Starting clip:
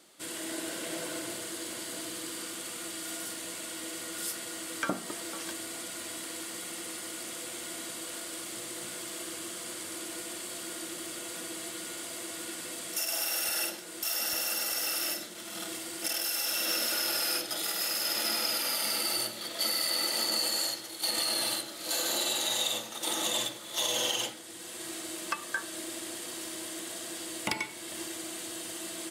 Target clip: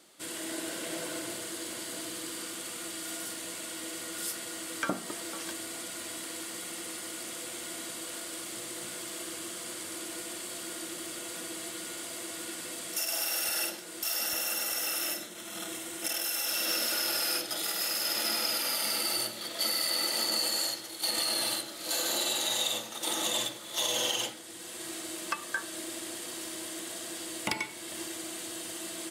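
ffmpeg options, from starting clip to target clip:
-filter_complex "[0:a]asettb=1/sr,asplit=3[s0][s1][s2];[s0]atrim=end=14.264[s3];[s1]atrim=start=14.26:end=16.49,asetpts=PTS-STARTPTS,afade=t=in:d=0.004:c=qsin,afade=t=out:st=2.226:d=0.004:c=qsin,bandreject=f=4700:w=5.9[s4];[s2]atrim=start=16.486[s5];[s3][s4]acrossfade=d=0.004:c1=hsin:c2=qsin[s6];[s6][s5]acrossfade=d=0.004:c1=qsin:c2=hsin"

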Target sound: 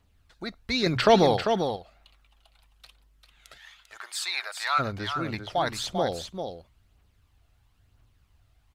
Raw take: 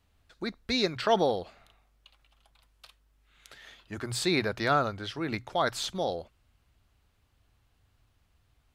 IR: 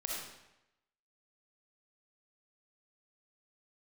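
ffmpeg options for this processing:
-filter_complex "[0:a]asplit=3[s0][s1][s2];[s0]afade=t=out:st=3.57:d=0.02[s3];[s1]highpass=f=830:w=0.5412,highpass=f=830:w=1.3066,afade=t=in:st=3.57:d=0.02,afade=t=out:st=4.78:d=0.02[s4];[s2]afade=t=in:st=4.78:d=0.02[s5];[s3][s4][s5]amix=inputs=3:normalize=0,aphaser=in_gain=1:out_gain=1:delay=1.6:decay=0.44:speed=1:type=triangular,asettb=1/sr,asplit=3[s6][s7][s8];[s6]atrim=end=0.864[s9];[s7]atrim=start=0.86:end=1.37,asetpts=PTS-STARTPTS,afade=t=in:d=0.004:c=qsin,afade=t=out:st=0.506:d=0.004:c=qsin,acontrast=85[s10];[s8]atrim=start=1.366[s11];[s9][s10]acrossfade=d=0.004:c1=hsin:c2=qsin[s12];[s12][s11]acrossfade=d=0.004:c1=qsin:c2=hsin,asplit=2[s13][s14];[s14]aecho=0:1:395:0.447[s15];[s13][s15]amix=inputs=2:normalize=0"

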